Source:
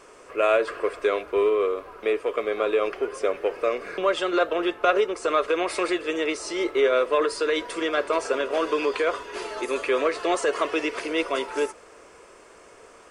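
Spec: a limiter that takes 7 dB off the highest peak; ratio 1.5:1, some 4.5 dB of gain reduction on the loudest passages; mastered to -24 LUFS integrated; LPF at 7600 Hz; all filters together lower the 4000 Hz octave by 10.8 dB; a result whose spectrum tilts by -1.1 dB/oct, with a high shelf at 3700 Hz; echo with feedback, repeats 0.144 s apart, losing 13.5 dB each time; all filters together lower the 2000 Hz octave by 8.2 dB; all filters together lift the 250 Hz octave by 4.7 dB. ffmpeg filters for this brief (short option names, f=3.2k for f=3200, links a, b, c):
-af "lowpass=7.6k,equalizer=f=250:t=o:g=8,equalizer=f=2k:t=o:g=-7.5,highshelf=f=3.7k:g=-8.5,equalizer=f=4k:t=o:g=-6,acompressor=threshold=-28dB:ratio=1.5,alimiter=limit=-18dB:level=0:latency=1,aecho=1:1:144|288:0.211|0.0444,volume=4.5dB"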